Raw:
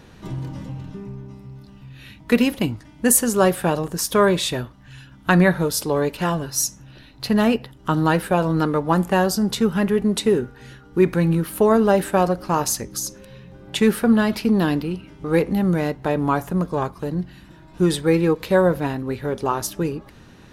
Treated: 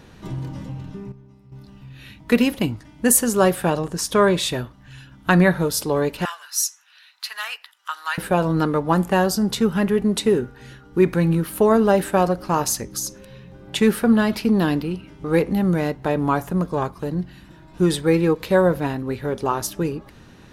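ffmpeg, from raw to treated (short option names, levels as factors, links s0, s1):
-filter_complex "[0:a]asettb=1/sr,asplit=3[s0][s1][s2];[s0]atrim=end=3.704[s3];[s1]atrim=start=3.7:end=4.37,asetpts=PTS-STARTPTS,afade=t=in:d=0.004:c=qsin,afade=t=out:st=0.666:d=0.004:c=qsin,lowpass=9800[s4];[s2]atrim=start=4.366[s5];[s3][s4]acrossfade=d=0.004:c1=hsin:c2=qsin[s6];[s6][s5]acrossfade=d=0.004:c1=qsin:c2=hsin,asettb=1/sr,asplit=3[s7][s8][s9];[s7]atrim=end=6.254[s10];[s8]atrim=start=6.25:end=8.18,asetpts=PTS-STARTPTS,afade=t=in:d=0.004:c=qsin,afade=t=out:st=1.926:d=0.004:c=qsin,highpass=f=1200:w=0.5412,highpass=f=1200:w=1.3066[s11];[s9]atrim=start=8.176[s12];[s10][s11]acrossfade=d=0.004:c1=hsin:c2=qsin[s13];[s13][s12]acrossfade=d=0.004:c1=qsin:c2=hsin,asplit=3[s14][s15][s16];[s14]atrim=end=1.122[s17];[s15]atrim=start=1.118:end=1.522,asetpts=PTS-STARTPTS,volume=0.299[s18];[s16]atrim=start=1.518[s19];[s17][s18]acrossfade=d=0.004:c1=hsin:c2=hsin[s20];[s20][s19]acrossfade=d=0.004:c1=hsin:c2=hsin"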